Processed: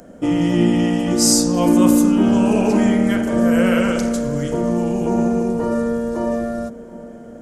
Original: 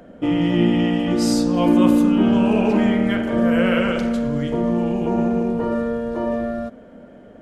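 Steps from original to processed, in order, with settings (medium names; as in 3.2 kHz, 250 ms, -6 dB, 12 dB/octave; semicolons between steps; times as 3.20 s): resonant high shelf 4.7 kHz +11.5 dB, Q 1.5; filtered feedback delay 719 ms, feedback 58%, low-pass 1 kHz, level -17.5 dB; trim +1.5 dB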